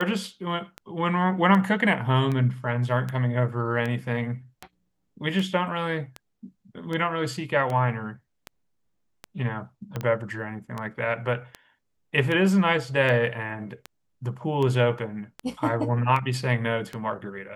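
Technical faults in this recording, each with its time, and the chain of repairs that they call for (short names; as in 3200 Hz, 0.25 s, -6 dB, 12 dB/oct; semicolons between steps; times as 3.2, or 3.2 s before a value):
tick 78 rpm -18 dBFS
9.96 pop -17 dBFS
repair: de-click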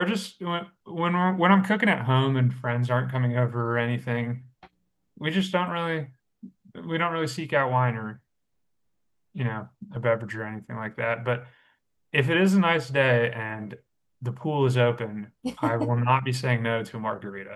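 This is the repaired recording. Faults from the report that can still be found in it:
9.96 pop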